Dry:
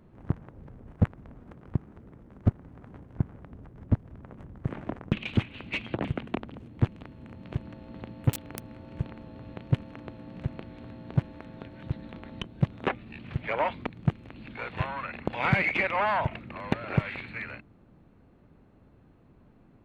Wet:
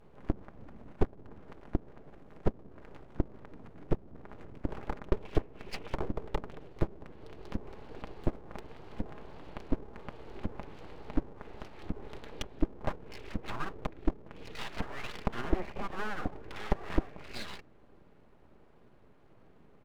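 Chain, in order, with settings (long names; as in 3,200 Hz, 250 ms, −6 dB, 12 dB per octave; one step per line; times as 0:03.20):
pitch vibrato 1.4 Hz 78 cents
treble cut that deepens with the level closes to 510 Hz, closed at −27 dBFS
comb filter 4.9 ms, depth 60%
full-wave rectification
level −1 dB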